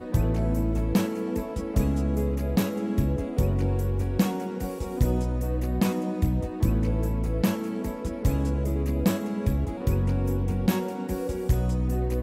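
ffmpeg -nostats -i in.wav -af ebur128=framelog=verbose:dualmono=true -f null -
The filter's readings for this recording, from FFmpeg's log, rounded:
Integrated loudness:
  I:         -24.0 LUFS
  Threshold: -34.0 LUFS
Loudness range:
  LRA:         0.6 LU
  Threshold: -44.0 LUFS
  LRA low:   -24.3 LUFS
  LRA high:  -23.7 LUFS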